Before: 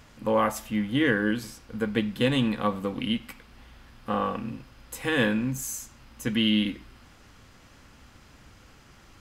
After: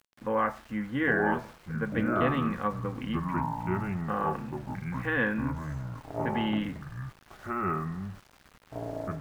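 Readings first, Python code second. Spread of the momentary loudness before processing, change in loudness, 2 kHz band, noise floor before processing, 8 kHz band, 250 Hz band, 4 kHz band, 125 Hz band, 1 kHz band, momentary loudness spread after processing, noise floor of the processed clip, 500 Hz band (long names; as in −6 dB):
15 LU, −4.0 dB, −0.5 dB, −54 dBFS, below −15 dB, −4.0 dB, −13.5 dB, +1.0 dB, +2.0 dB, 13 LU, −60 dBFS, −2.5 dB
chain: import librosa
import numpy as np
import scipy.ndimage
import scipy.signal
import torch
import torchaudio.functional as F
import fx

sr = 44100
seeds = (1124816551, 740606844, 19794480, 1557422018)

y = fx.lowpass_res(x, sr, hz=1700.0, q=2.0)
y = fx.echo_pitch(y, sr, ms=724, semitones=-5, count=2, db_per_echo=-3.0)
y = np.where(np.abs(y) >= 10.0 ** (-43.0 / 20.0), y, 0.0)
y = y * 10.0 ** (-6.0 / 20.0)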